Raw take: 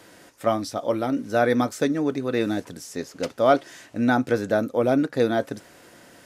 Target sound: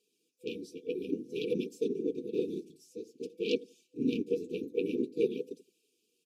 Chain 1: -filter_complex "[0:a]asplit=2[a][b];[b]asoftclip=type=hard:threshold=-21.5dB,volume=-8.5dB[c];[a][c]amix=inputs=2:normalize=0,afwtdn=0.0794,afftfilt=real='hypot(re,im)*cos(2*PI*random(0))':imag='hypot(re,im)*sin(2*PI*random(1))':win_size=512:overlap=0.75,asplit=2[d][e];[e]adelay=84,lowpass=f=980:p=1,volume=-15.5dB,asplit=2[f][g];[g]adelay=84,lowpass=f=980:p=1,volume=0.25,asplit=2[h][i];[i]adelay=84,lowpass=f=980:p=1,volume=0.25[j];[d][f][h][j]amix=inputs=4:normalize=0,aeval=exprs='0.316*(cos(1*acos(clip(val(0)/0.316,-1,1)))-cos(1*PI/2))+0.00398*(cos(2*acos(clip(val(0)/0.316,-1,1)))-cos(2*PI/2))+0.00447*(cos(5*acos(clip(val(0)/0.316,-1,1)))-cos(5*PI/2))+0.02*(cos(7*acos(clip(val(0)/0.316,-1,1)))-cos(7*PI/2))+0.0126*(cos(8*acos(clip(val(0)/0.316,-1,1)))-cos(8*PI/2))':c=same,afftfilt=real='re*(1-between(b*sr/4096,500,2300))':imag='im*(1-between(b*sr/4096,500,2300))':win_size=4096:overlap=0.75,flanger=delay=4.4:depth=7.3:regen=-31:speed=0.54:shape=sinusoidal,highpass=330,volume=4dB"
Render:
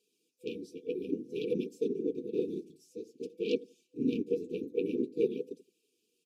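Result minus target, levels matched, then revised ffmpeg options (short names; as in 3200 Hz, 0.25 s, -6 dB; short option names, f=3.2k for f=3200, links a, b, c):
2000 Hz band -3.5 dB
-filter_complex "[0:a]asplit=2[a][b];[b]asoftclip=type=hard:threshold=-21.5dB,volume=-8.5dB[c];[a][c]amix=inputs=2:normalize=0,afwtdn=0.0794,afftfilt=real='hypot(re,im)*cos(2*PI*random(0))':imag='hypot(re,im)*sin(2*PI*random(1))':win_size=512:overlap=0.75,asplit=2[d][e];[e]adelay=84,lowpass=f=980:p=1,volume=-15.5dB,asplit=2[f][g];[g]adelay=84,lowpass=f=980:p=1,volume=0.25,asplit=2[h][i];[i]adelay=84,lowpass=f=980:p=1,volume=0.25[j];[d][f][h][j]amix=inputs=4:normalize=0,aeval=exprs='0.316*(cos(1*acos(clip(val(0)/0.316,-1,1)))-cos(1*PI/2))+0.00398*(cos(2*acos(clip(val(0)/0.316,-1,1)))-cos(2*PI/2))+0.00447*(cos(5*acos(clip(val(0)/0.316,-1,1)))-cos(5*PI/2))+0.02*(cos(7*acos(clip(val(0)/0.316,-1,1)))-cos(7*PI/2))+0.0126*(cos(8*acos(clip(val(0)/0.316,-1,1)))-cos(8*PI/2))':c=same,afftfilt=real='re*(1-between(b*sr/4096,500,2300))':imag='im*(1-between(b*sr/4096,500,2300))':win_size=4096:overlap=0.75,flanger=delay=4.4:depth=7.3:regen=-31:speed=0.54:shape=sinusoidal,highpass=330,adynamicequalizer=threshold=0.002:dfrequency=1800:dqfactor=0.7:tfrequency=1800:tqfactor=0.7:attack=5:release=100:ratio=0.333:range=2.5:mode=boostabove:tftype=highshelf,volume=4dB"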